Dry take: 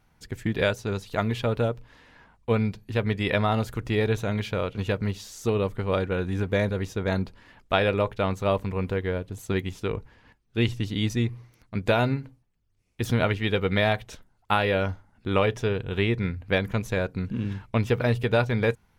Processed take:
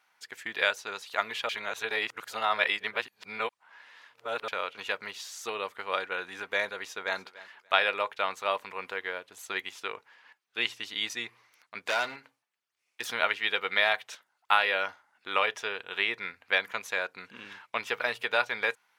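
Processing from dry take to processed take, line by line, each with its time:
1.49–4.48 reverse
6.75–7.18 echo throw 0.29 s, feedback 20%, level -18 dB
11.81–13.02 hard clip -20.5 dBFS
whole clip: HPF 1100 Hz 12 dB/oct; high shelf 5300 Hz -6.5 dB; gain +4 dB

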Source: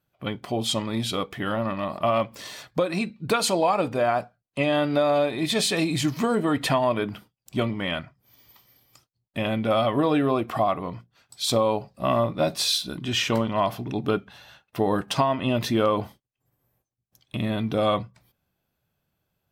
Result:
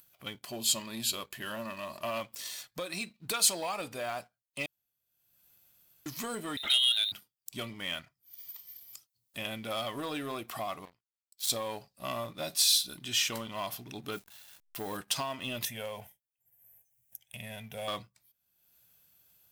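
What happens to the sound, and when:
0.45–2.2 ripple EQ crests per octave 1.4, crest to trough 8 dB
4.66–6.06 room tone
6.57–7.12 inverted band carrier 3900 Hz
10.85–11.5 power-law curve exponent 2
14.12–14.97 level-crossing sampler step -47 dBFS
15.65–17.88 fixed phaser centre 1200 Hz, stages 6
whole clip: upward compressor, threshold -41 dBFS; sample leveller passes 1; pre-emphasis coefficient 0.9

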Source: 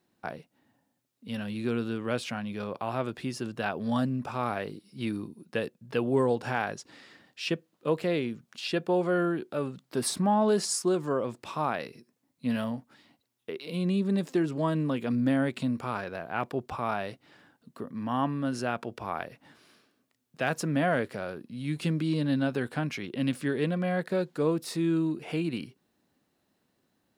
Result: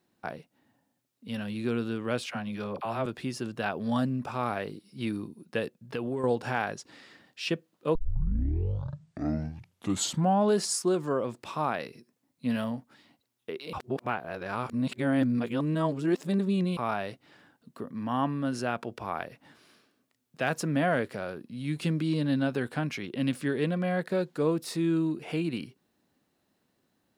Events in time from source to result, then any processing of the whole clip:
2.26–3.06 dispersion lows, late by 43 ms, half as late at 560 Hz
5.76–6.24 compressor, threshold -28 dBFS
7.95 tape start 2.57 s
13.73–16.77 reverse

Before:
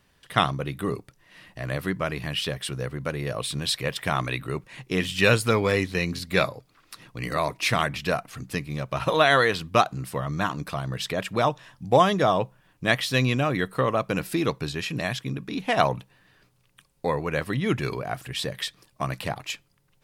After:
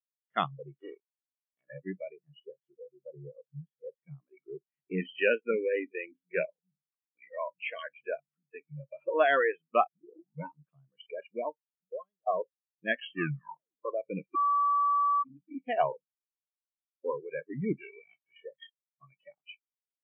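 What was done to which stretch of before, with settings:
0.74–1.61 spectral contrast lowered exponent 0.32
2.15–4.37 tape spacing loss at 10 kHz 41 dB
5.18–8.7 bands offset in time highs, lows 0.31 s, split 180 Hz
9.87 tape start 0.63 s
11.22–12.27 fade out linear
12.91 tape stop 0.94 s
14.35–15.23 bleep 1150 Hz -20 dBFS
15.87–17.12 doubler 46 ms -7 dB
17.79–18.43 spectral whitening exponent 0.3
whole clip: FFT band-pass 130–3500 Hz; spectral noise reduction 24 dB; spectral expander 1.5:1; gain -5.5 dB

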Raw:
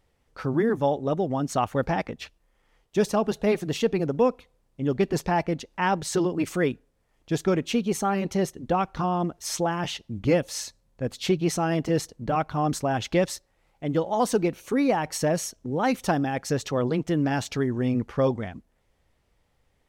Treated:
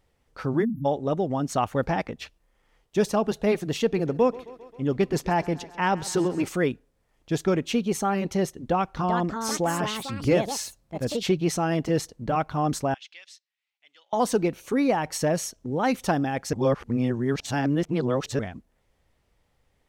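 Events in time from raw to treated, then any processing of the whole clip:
0.64–0.85 spectral delete 290–11000 Hz
3.81–6.48 thinning echo 0.133 s, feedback 73%, high-pass 190 Hz, level -19 dB
8.68–11.39 echoes that change speed 0.396 s, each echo +4 st, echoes 2, each echo -6 dB
12.94–14.13 ladder band-pass 3600 Hz, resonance 25%
16.53–18.39 reverse

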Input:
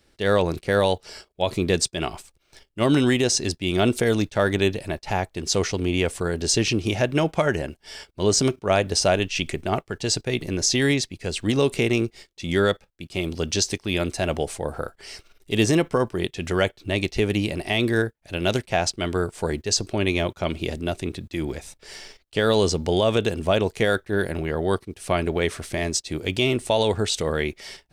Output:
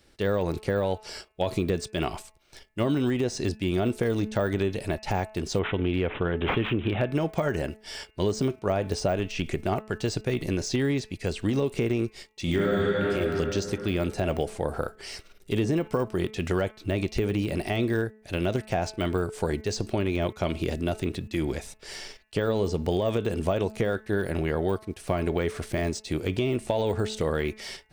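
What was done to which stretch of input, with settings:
5.59–7.12 careless resampling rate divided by 6×, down none, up filtered
12.42–13.11 reverb throw, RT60 2.7 s, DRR -6 dB
whole clip: de-esser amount 95%; de-hum 216.2 Hz, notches 13; compressor 4:1, threshold -24 dBFS; gain +1.5 dB

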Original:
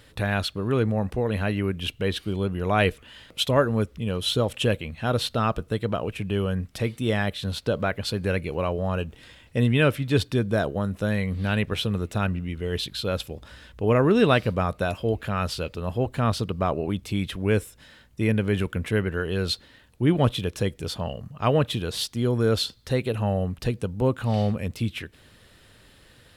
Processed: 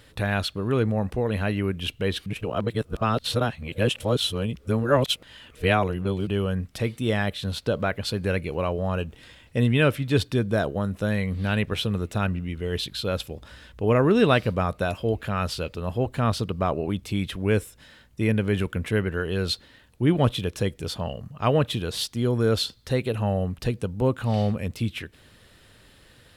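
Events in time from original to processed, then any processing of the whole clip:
2.26–6.27 reverse

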